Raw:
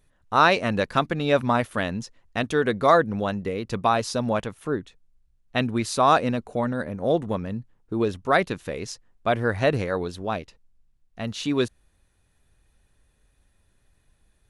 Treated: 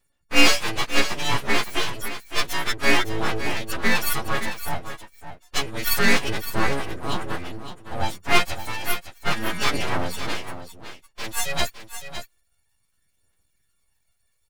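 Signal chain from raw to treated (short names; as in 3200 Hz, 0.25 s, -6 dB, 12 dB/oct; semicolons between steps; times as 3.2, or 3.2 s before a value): frequency quantiser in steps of 4 st; gate -45 dBFS, range -10 dB; phaser 0.3 Hz, delay 3 ms, feedback 54%; full-wave rectifier; on a send: echo 0.561 s -10.5 dB; on the sum: gain -1 dB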